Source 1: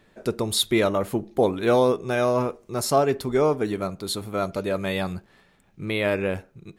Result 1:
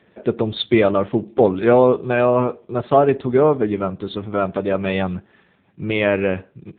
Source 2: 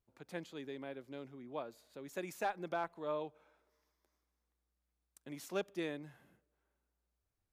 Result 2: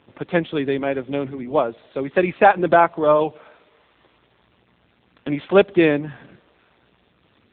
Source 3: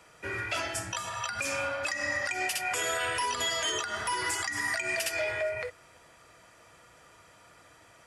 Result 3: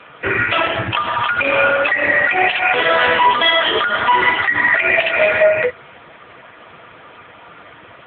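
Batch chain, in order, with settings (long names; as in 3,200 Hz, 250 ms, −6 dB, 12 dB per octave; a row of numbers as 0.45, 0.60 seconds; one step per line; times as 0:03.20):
AMR narrowband 6.7 kbit/s 8,000 Hz
normalise the peak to −1.5 dBFS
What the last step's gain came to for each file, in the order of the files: +6.5, +25.0, +20.5 decibels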